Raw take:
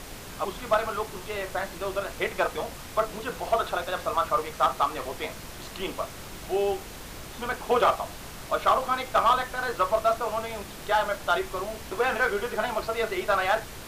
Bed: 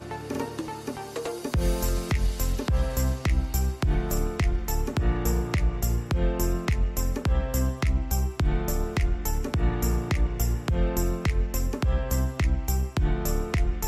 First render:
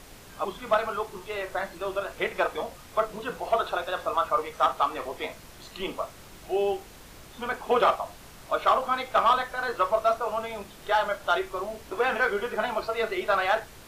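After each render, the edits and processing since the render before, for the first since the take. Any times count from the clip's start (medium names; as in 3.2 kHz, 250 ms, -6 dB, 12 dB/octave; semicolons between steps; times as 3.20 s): noise print and reduce 7 dB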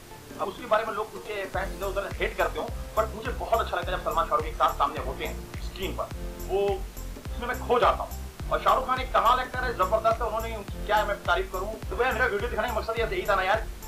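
add bed -12 dB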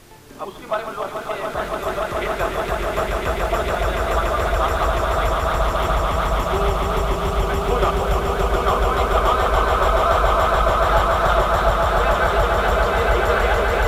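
echo with a slow build-up 143 ms, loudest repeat 8, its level -5.5 dB; modulated delay 293 ms, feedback 46%, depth 167 cents, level -7 dB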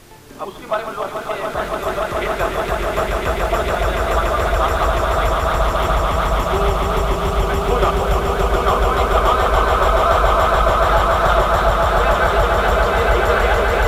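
trim +2.5 dB; peak limiter -3 dBFS, peak gain reduction 2 dB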